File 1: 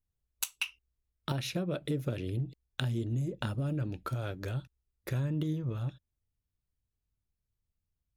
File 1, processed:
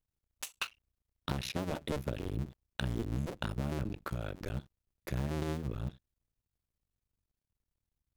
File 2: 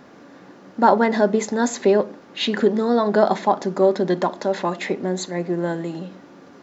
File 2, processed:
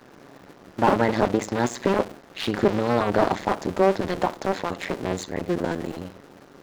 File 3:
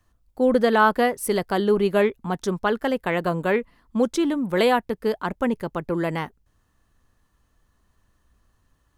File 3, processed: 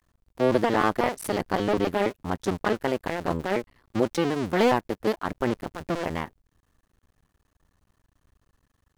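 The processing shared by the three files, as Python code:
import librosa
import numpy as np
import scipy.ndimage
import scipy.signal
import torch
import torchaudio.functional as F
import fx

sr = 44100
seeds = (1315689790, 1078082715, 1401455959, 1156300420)

y = fx.cycle_switch(x, sr, every=2, mode='muted')
y = fx.slew_limit(y, sr, full_power_hz=190.0)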